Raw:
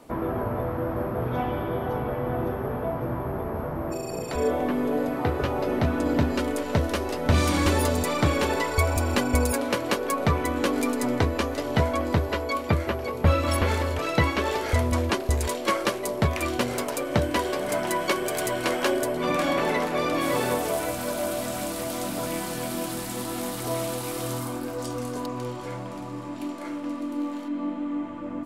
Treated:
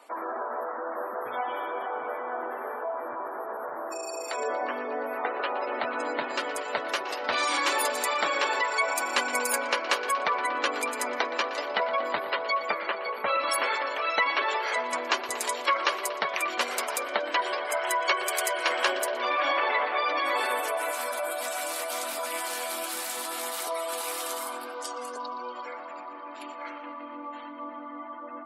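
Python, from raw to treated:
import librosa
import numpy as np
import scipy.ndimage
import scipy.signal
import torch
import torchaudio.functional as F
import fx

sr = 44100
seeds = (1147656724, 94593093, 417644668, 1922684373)

p1 = scipy.signal.sosfilt(scipy.signal.butter(2, 830.0, 'highpass', fs=sr, output='sos'), x)
p2 = fx.spec_gate(p1, sr, threshold_db=-20, keep='strong')
p3 = p2 + fx.echo_bbd(p2, sr, ms=118, stages=4096, feedback_pct=81, wet_db=-14, dry=0)
y = F.gain(torch.from_numpy(p3), 3.0).numpy()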